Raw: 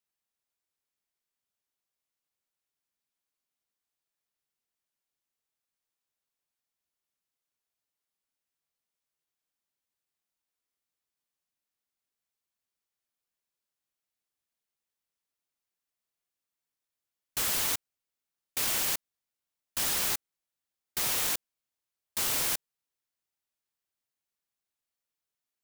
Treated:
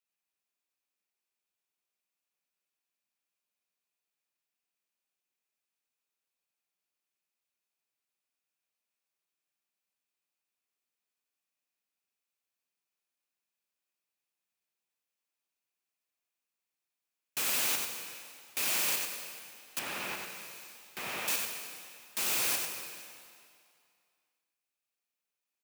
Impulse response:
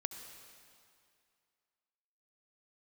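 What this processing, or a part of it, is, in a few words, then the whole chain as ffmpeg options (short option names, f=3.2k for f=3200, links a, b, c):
PA in a hall: -filter_complex "[0:a]highpass=170,equalizer=f=2.5k:t=o:w=0.22:g=8,aecho=1:1:95:0.562[a];[1:a]atrim=start_sample=2205[b];[a][b]afir=irnorm=-1:irlink=0,asettb=1/sr,asplit=3[c][d][e];[c]atrim=end=19.794[f];[d]atrim=start=19.79:end=21.28,asetpts=PTS-STARTPTS,afade=t=in:d=0.004:c=qsin,afade=t=out:st=1.486:d=0.004:c=qsin,acrossover=split=2900[g][h];[h]acompressor=threshold=-42dB:ratio=4:attack=1:release=60[i];[g][i]amix=inputs=2:normalize=0[j];[e]atrim=start=21.276[k];[f][j]acrossfade=d=0.004:c1=hsin:c2=qsin[l];[l][k]acrossfade=d=0.004:c1=qsin:c2=hsin,volume=-1.5dB"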